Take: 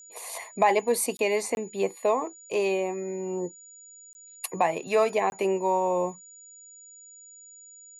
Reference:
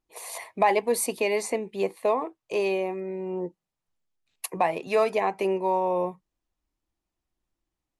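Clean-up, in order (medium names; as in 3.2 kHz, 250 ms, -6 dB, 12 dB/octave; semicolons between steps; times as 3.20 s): band-stop 6.9 kHz, Q 30; interpolate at 1.17/1.55/4.13/5.30 s, 21 ms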